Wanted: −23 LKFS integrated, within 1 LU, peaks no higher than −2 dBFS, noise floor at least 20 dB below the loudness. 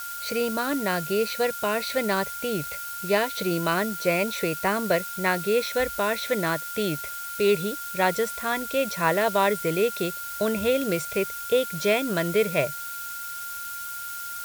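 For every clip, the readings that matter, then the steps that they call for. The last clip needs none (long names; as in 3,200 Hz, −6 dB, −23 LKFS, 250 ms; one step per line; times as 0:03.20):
interfering tone 1,400 Hz; level of the tone −35 dBFS; background noise floor −35 dBFS; target noise floor −46 dBFS; integrated loudness −25.5 LKFS; sample peak −7.5 dBFS; target loudness −23.0 LKFS
→ notch filter 1,400 Hz, Q 30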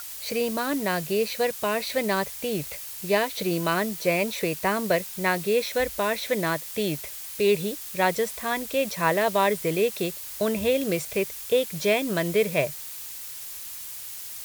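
interfering tone none found; background noise floor −38 dBFS; target noise floor −46 dBFS
→ noise reduction from a noise print 8 dB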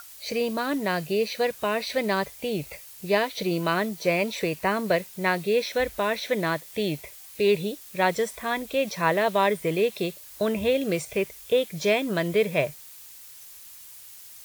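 background noise floor −46 dBFS; integrated loudness −26.0 LKFS; sample peak −8.0 dBFS; target loudness −23.0 LKFS
→ level +3 dB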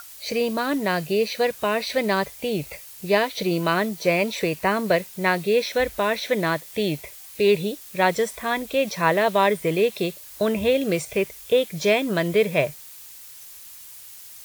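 integrated loudness −23.0 LKFS; sample peak −5.0 dBFS; background noise floor −43 dBFS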